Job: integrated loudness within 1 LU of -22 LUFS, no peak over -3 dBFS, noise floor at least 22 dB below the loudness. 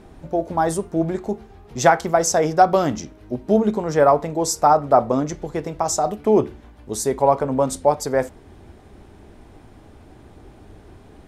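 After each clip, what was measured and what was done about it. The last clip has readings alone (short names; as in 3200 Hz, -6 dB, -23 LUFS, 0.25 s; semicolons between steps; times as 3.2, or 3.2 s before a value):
dropouts 1; longest dropout 1.6 ms; loudness -20.0 LUFS; peak -2.5 dBFS; loudness target -22.0 LUFS
-> interpolate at 2.73, 1.6 ms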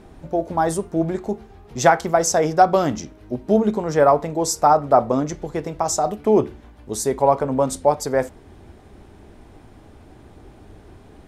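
dropouts 0; loudness -20.0 LUFS; peak -2.5 dBFS; loudness target -22.0 LUFS
-> gain -2 dB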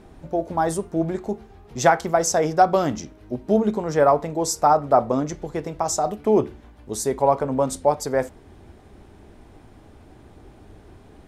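loudness -22.0 LUFS; peak -4.5 dBFS; noise floor -49 dBFS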